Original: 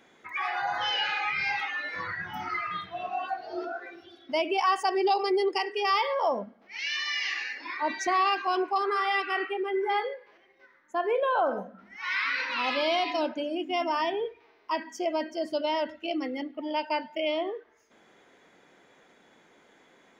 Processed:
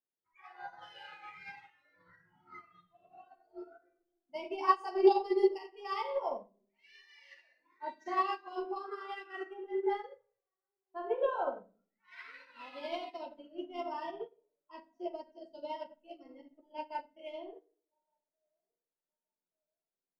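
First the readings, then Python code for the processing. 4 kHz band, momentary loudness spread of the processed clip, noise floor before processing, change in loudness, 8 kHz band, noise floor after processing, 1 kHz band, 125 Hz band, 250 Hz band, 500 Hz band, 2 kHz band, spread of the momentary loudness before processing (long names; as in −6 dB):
−19.0 dB, 22 LU, −61 dBFS, −6.5 dB, below −20 dB, below −85 dBFS, −9.5 dB, can't be measured, −6.5 dB, −5.5 dB, −18.0 dB, 10 LU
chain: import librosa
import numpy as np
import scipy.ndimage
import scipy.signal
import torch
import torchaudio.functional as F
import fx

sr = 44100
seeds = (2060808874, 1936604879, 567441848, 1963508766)

p1 = fx.echo_banded(x, sr, ms=1173, feedback_pct=44, hz=800.0, wet_db=-23.0)
p2 = fx.env_lowpass(p1, sr, base_hz=1400.0, full_db=-25.0)
p3 = fx.high_shelf(p2, sr, hz=2100.0, db=-6.5)
p4 = fx.backlash(p3, sr, play_db=-37.0)
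p5 = p3 + (p4 * librosa.db_to_amplitude(-8.0))
p6 = fx.noise_reduce_blind(p5, sr, reduce_db=10)
p7 = fx.room_shoebox(p6, sr, seeds[0], volume_m3=68.0, walls='mixed', distance_m=0.83)
p8 = fx.upward_expand(p7, sr, threshold_db=-33.0, expansion=2.5)
y = p8 * librosa.db_to_amplitude(-4.5)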